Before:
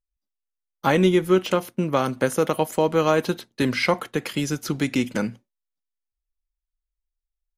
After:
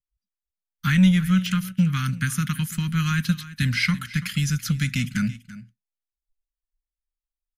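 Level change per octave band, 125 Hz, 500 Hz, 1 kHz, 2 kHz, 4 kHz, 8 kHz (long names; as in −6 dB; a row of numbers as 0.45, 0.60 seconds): +7.5 dB, below −25 dB, −9.5 dB, +1.0 dB, +1.0 dB, +2.0 dB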